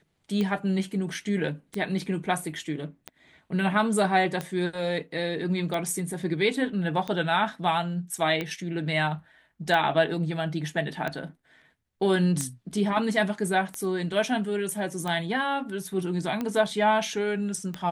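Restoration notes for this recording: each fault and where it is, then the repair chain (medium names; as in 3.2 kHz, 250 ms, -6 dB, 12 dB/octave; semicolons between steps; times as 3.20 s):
tick 45 rpm -17 dBFS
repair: de-click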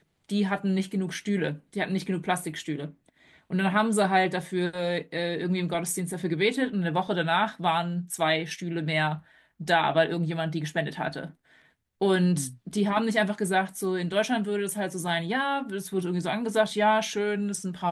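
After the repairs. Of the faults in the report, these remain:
nothing left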